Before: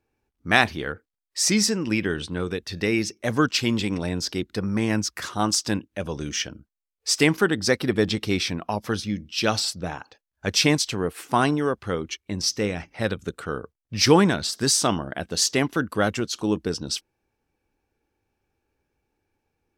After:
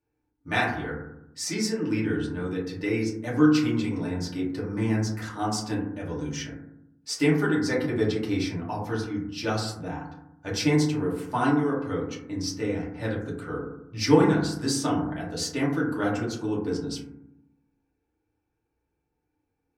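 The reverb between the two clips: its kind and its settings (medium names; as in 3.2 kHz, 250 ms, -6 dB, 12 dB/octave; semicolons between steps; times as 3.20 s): FDN reverb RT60 0.8 s, low-frequency decay 1.5×, high-frequency decay 0.25×, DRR -7 dB; trim -13 dB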